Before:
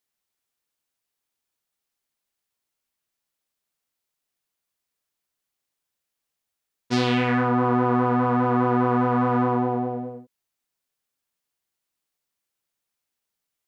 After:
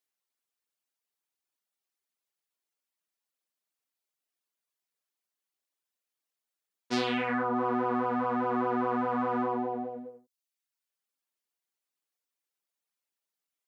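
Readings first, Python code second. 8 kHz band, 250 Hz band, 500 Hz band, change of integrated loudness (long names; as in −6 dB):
can't be measured, −9.5 dB, −7.0 dB, −8.0 dB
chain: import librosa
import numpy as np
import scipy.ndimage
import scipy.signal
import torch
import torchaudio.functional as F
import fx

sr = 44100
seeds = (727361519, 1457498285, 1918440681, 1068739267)

y = scipy.signal.sosfilt(scipy.signal.butter(2, 240.0, 'highpass', fs=sr, output='sos'), x)
y = fx.dereverb_blind(y, sr, rt60_s=0.74)
y = y * 10.0 ** (-4.5 / 20.0)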